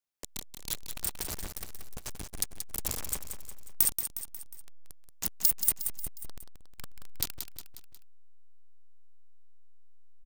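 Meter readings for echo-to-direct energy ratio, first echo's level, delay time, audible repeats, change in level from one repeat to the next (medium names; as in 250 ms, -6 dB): -6.5 dB, -8.0 dB, 180 ms, 4, -6.0 dB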